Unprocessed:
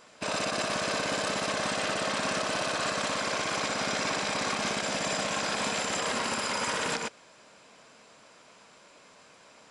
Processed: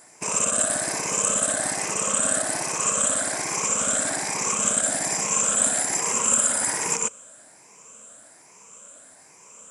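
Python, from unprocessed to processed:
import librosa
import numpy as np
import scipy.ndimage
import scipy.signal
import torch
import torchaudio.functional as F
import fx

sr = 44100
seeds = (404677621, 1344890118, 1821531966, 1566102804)

y = fx.spec_ripple(x, sr, per_octave=0.78, drift_hz=1.2, depth_db=10)
y = fx.high_shelf_res(y, sr, hz=5900.0, db=11.5, q=3.0)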